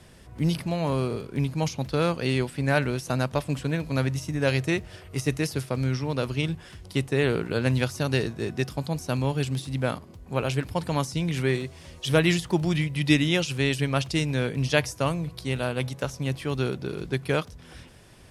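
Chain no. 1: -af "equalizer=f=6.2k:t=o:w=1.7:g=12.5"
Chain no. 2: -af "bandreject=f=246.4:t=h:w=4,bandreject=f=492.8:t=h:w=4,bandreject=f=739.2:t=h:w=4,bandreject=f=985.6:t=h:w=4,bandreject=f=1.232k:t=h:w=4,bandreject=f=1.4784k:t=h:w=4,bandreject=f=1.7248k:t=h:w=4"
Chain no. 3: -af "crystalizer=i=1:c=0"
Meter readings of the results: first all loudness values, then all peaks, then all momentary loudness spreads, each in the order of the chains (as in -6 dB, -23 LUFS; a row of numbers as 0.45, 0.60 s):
-25.0, -27.0, -26.5 LUFS; -1.5, -4.5, -3.5 dBFS; 8, 7, 7 LU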